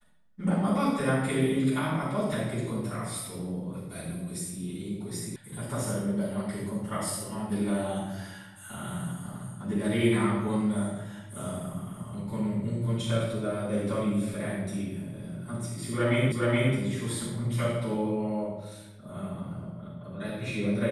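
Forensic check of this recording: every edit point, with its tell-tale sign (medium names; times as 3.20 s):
5.36 s: sound stops dead
16.32 s: repeat of the last 0.42 s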